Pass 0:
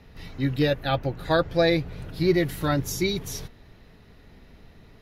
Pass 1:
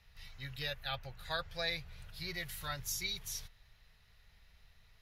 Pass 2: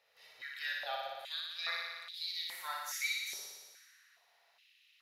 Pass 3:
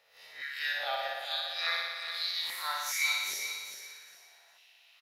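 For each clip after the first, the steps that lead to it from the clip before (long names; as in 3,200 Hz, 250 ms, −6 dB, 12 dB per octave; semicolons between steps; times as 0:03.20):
guitar amp tone stack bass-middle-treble 10-0-10; level −5 dB
flutter between parallel walls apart 10.1 metres, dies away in 1.4 s; high-pass on a step sequencer 2.4 Hz 530–3,600 Hz; level −5.5 dB
peak hold with a rise ahead of every peak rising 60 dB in 0.37 s; on a send: repeating echo 406 ms, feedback 25%, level −9 dB; on the sum: level +4.5 dB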